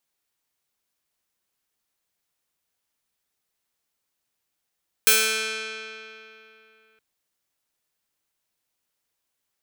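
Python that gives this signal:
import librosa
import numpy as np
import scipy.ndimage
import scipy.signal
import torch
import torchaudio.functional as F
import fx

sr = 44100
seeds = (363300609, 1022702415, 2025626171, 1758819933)

y = fx.pluck(sr, length_s=1.92, note=57, decay_s=3.03, pick=0.23, brightness='bright')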